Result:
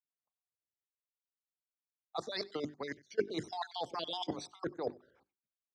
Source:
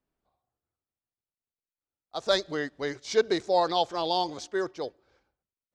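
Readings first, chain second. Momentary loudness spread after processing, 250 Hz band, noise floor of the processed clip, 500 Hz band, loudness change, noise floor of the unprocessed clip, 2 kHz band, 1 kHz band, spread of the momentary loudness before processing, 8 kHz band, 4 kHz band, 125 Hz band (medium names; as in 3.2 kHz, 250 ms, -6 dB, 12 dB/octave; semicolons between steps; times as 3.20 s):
6 LU, -7.5 dB, under -85 dBFS, -12.0 dB, -11.5 dB, under -85 dBFS, -11.0 dB, -12.5 dB, 11 LU, -12.0 dB, -10.0 dB, -5.5 dB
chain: random holes in the spectrogram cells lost 51%; level held to a coarse grid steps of 19 dB; hum notches 50/100/150/200/250/300/350/400 Hz; harmonic-percussive split percussive +7 dB; dynamic bell 500 Hz, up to -5 dB, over -39 dBFS, Q 0.86; reverse; compression 8:1, threshold -43 dBFS, peak gain reduction 24.5 dB; reverse; high-pass 110 Hz 12 dB/octave; treble shelf 4.1 kHz -7 dB; on a send: delay 95 ms -23 dB; on the sum: three bands expanded up and down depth 70%; trim +9 dB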